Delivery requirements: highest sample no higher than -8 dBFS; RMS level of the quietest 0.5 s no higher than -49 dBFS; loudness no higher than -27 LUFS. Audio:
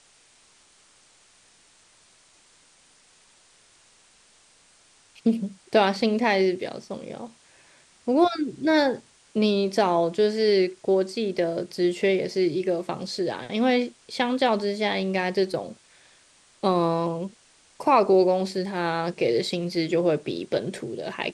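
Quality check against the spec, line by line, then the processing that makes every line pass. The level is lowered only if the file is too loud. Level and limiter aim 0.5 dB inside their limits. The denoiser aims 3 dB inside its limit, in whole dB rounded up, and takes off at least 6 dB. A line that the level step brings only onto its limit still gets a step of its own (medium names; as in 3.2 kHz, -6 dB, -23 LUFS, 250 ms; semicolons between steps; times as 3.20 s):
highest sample -7.0 dBFS: fail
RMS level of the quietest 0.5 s -58 dBFS: pass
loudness -24.5 LUFS: fail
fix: trim -3 dB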